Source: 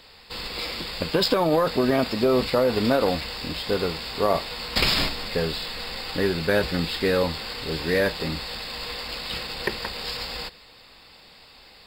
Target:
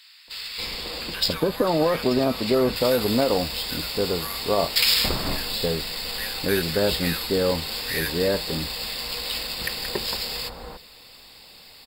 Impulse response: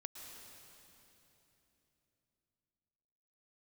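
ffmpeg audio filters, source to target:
-filter_complex "[0:a]asetnsamples=nb_out_samples=441:pad=0,asendcmd='2.76 equalizer g 13.5',equalizer=frequency=13000:width_type=o:width=1.4:gain=4.5,acrossover=split=1400[link_01][link_02];[link_01]adelay=280[link_03];[link_03][link_02]amix=inputs=2:normalize=0"

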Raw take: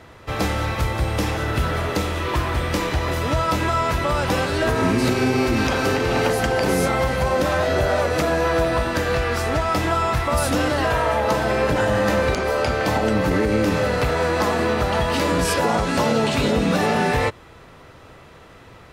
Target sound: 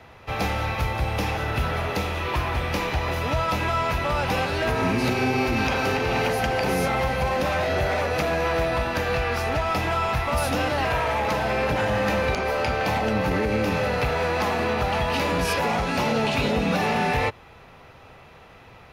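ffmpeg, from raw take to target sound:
ffmpeg -i in.wav -filter_complex "[0:a]equalizer=frequency=315:width_type=o:width=0.33:gain=-5,equalizer=frequency=800:width_type=o:width=0.33:gain=6,equalizer=frequency=2500:width_type=o:width=0.33:gain=6,equalizer=frequency=8000:width_type=o:width=0.33:gain=-10,acrossover=split=410|1300|7100[link_01][link_02][link_03][link_04];[link_02]aeval=exprs='0.106*(abs(mod(val(0)/0.106+3,4)-2)-1)':channel_layout=same[link_05];[link_01][link_05][link_03][link_04]amix=inputs=4:normalize=0,volume=-3.5dB" out.wav

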